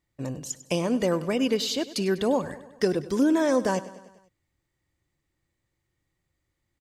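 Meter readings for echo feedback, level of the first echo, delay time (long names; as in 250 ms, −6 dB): 58%, −16.5 dB, 99 ms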